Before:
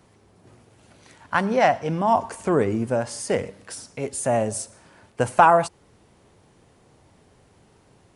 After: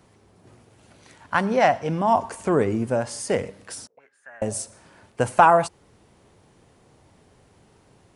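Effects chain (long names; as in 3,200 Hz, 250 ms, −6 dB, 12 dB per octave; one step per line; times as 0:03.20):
0:03.87–0:04.42: envelope filter 430–1,600 Hz, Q 12, up, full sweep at −28.5 dBFS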